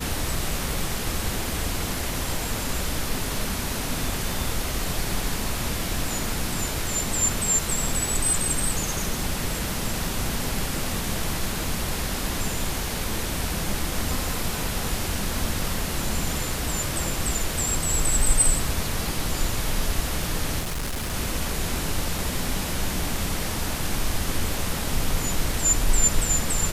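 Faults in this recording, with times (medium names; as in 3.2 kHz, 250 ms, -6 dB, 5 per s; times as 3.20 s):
20.59–21.14 s: clipped -25 dBFS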